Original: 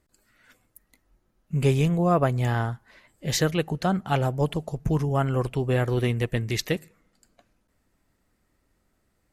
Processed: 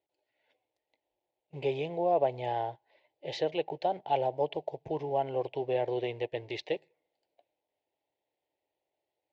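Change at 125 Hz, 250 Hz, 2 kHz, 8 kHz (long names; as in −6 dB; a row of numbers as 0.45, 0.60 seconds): −20.5 dB, −14.0 dB, −12.0 dB, below −25 dB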